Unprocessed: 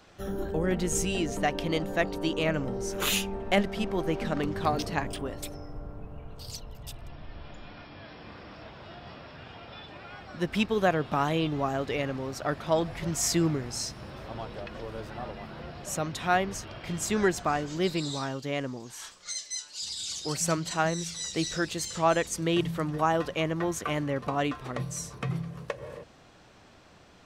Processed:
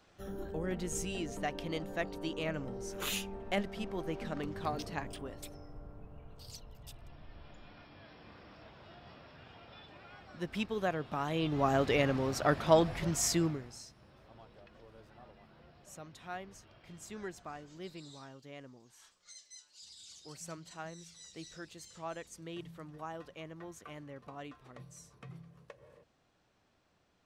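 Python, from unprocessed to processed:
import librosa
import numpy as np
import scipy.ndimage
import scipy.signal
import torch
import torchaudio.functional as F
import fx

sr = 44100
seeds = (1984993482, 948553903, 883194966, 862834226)

y = fx.gain(x, sr, db=fx.line((11.23, -9.0), (11.74, 1.5), (12.71, 1.5), (13.44, -5.5), (13.85, -18.0)))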